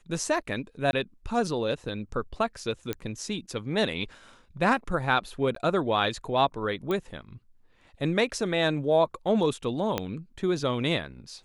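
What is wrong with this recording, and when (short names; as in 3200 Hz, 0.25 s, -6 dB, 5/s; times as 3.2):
0.91–0.93 gap 21 ms
2.93 pop -15 dBFS
5.55–5.56 gap
6.91 pop -18 dBFS
9.98 pop -12 dBFS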